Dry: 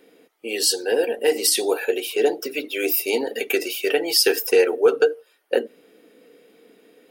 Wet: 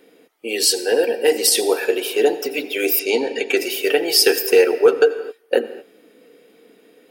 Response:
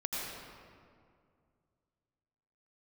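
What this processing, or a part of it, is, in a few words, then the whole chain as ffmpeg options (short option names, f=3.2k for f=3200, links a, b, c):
keyed gated reverb: -filter_complex "[0:a]asplit=3[a][b][c];[1:a]atrim=start_sample=2205[d];[b][d]afir=irnorm=-1:irlink=0[e];[c]apad=whole_len=313544[f];[e][f]sidechaingate=range=-26dB:threshold=-43dB:ratio=16:detection=peak,volume=-15dB[g];[a][g]amix=inputs=2:normalize=0,asettb=1/sr,asplit=3[h][i][j];[h]atrim=end=2.994[k];[i]atrim=start=2.99:end=3.57,asetpts=PTS-STARTPTS,afade=t=in:d=0.004:c=qsin,afade=t=out:st=0.576:d=0.004:c=qsin,lowpass=f=7.9k:w=0.5412,lowpass=f=7.9k:w=1.3066[l];[j]atrim=start=3.566[m];[k][l]acrossfade=d=0.004:c1=hsin:c2=qsin[n];[n][m]acrossfade=d=0.004:c1=qsin:c2=hsin,volume=2dB"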